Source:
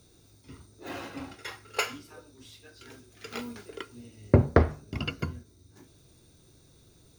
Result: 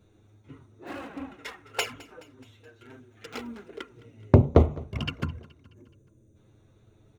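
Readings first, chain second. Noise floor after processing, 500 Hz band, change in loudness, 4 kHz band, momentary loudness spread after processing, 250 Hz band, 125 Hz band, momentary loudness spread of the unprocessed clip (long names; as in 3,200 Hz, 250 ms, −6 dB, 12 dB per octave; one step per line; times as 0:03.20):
−61 dBFS, +2.0 dB, +3.5 dB, +1.0 dB, 23 LU, +2.5 dB, +3.5 dB, 24 LU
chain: adaptive Wiener filter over 9 samples
tape wow and flutter 16 cents
gain on a spectral selection 0:05.64–0:06.36, 630–5,900 Hz −14 dB
flanger swept by the level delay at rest 10.3 ms, full sweep at −24.5 dBFS
on a send: repeating echo 212 ms, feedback 54%, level −21.5 dB
on the sum: level +3.5 dB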